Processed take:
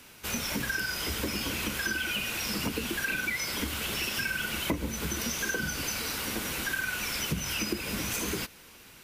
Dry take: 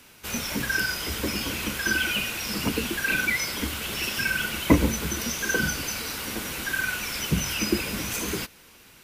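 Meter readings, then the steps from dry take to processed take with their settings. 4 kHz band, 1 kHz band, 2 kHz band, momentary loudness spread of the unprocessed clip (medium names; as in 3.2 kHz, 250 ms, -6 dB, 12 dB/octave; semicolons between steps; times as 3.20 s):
-3.5 dB, -4.0 dB, -5.0 dB, 7 LU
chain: compression 6:1, threshold -28 dBFS, peak gain reduction 15.5 dB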